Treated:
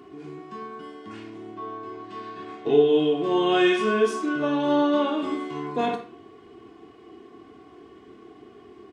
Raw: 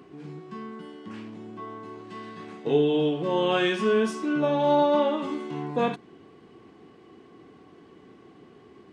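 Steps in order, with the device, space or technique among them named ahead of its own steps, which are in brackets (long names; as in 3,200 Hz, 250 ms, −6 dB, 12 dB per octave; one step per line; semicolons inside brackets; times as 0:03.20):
0:01.54–0:02.90: low-pass filter 6,200 Hz 12 dB per octave
microphone above a desk (comb filter 2.8 ms, depth 57%; convolution reverb RT60 0.45 s, pre-delay 21 ms, DRR 4.5 dB)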